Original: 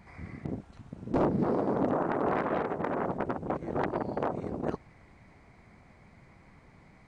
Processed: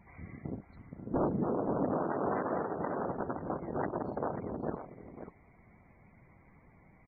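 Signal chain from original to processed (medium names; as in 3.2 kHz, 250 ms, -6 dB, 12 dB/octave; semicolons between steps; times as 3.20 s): loudest bins only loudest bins 64; delay 540 ms -10.5 dB; trim -4 dB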